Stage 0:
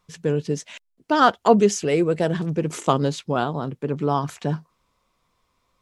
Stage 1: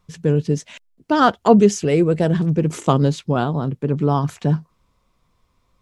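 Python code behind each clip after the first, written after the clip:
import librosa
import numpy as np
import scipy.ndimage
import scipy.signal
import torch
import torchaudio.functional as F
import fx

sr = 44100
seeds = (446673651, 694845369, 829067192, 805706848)

y = fx.low_shelf(x, sr, hz=250.0, db=10.5)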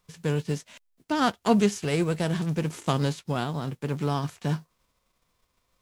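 y = fx.envelope_flatten(x, sr, power=0.6)
y = y * librosa.db_to_amplitude(-9.0)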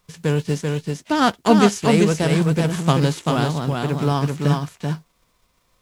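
y = x + 10.0 ** (-3.5 / 20.0) * np.pad(x, (int(388 * sr / 1000.0), 0))[:len(x)]
y = y * librosa.db_to_amplitude(6.5)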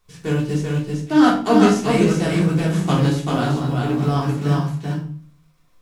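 y = fx.comb_fb(x, sr, f0_hz=76.0, decay_s=0.49, harmonics='all', damping=0.0, mix_pct=50)
y = fx.room_shoebox(y, sr, seeds[0], volume_m3=370.0, walls='furnished', distance_m=3.4)
y = y * librosa.db_to_amplitude(-2.5)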